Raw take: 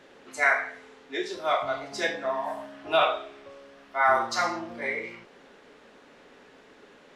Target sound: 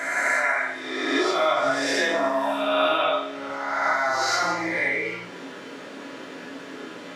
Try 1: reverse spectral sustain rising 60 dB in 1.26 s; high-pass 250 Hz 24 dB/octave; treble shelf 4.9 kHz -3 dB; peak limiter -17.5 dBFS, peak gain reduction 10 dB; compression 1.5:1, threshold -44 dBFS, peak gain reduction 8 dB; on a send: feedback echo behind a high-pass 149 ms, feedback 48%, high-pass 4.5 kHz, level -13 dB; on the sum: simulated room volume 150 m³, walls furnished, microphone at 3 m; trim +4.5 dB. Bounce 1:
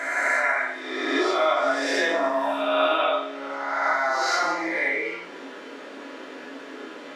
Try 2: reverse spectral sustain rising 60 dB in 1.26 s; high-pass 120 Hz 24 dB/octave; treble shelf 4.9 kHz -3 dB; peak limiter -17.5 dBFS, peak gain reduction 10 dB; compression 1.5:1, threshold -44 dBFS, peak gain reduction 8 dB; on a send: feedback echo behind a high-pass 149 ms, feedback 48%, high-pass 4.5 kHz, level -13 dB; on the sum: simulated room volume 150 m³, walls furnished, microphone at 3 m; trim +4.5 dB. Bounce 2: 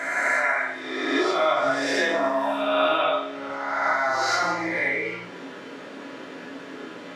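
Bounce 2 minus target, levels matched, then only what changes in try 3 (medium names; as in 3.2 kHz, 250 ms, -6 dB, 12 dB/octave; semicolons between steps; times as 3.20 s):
8 kHz band -3.5 dB
change: treble shelf 4.9 kHz +3.5 dB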